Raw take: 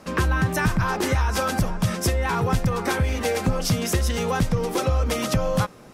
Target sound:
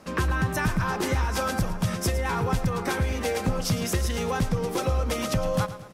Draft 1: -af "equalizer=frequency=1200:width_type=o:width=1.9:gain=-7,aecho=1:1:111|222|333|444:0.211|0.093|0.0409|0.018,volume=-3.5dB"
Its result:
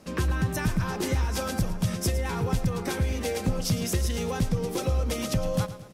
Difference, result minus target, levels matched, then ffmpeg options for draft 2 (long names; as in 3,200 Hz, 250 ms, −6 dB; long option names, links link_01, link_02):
1,000 Hz band −4.5 dB
-af "aecho=1:1:111|222|333|444:0.211|0.093|0.0409|0.018,volume=-3.5dB"